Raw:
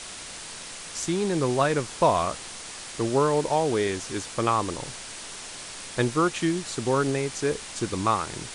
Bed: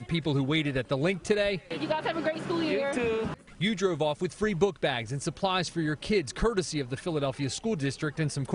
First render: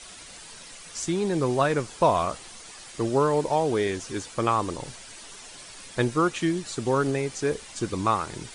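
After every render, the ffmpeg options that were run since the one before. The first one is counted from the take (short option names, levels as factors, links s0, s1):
-af "afftdn=nr=9:nf=-40"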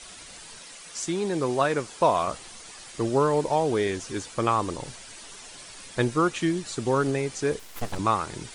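-filter_complex "[0:a]asettb=1/sr,asplit=3[s0][s1][s2];[s0]atrim=end=0.594[s3];[s1]atrim=start=0.59:end=2.28,asetpts=PTS-STARTPTS,afade=t=in:d=0.004:c=qsin,afade=t=out:st=1.686:d=0.004:c=qsin,lowshelf=f=120:g=-11.5[s4];[s2]atrim=start=2.276[s5];[s3][s4]acrossfade=d=0.004:c1=hsin:c2=qsin[s6];[s6][s5]acrossfade=d=0.004:c1=qsin:c2=hsin,asettb=1/sr,asplit=3[s7][s8][s9];[s7]atrim=end=7.594[s10];[s8]atrim=start=7.59:end=7.99,asetpts=PTS-STARTPTS,afade=t=in:d=0.004:c=qsin,afade=t=out:st=0.396:d=0.004:c=qsin,aeval=exprs='abs(val(0))':c=same[s11];[s9]atrim=start=7.986[s12];[s10][s11]acrossfade=d=0.004:c1=hsin:c2=qsin[s13];[s13][s12]acrossfade=d=0.004:c1=qsin:c2=hsin"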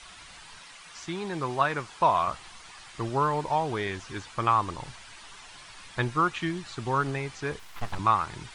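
-filter_complex "[0:a]acrossover=split=4300[s0][s1];[s1]acompressor=threshold=0.00178:ratio=4:attack=1:release=60[s2];[s0][s2]amix=inputs=2:normalize=0,equalizer=f=250:t=o:w=1:g=-6,equalizer=f=500:t=o:w=1:g=-9,equalizer=f=1000:t=o:w=1:g=4"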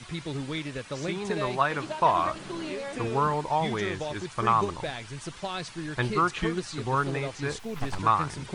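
-filter_complex "[1:a]volume=0.473[s0];[0:a][s0]amix=inputs=2:normalize=0"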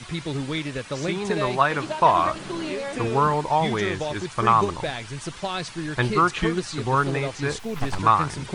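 -af "volume=1.78"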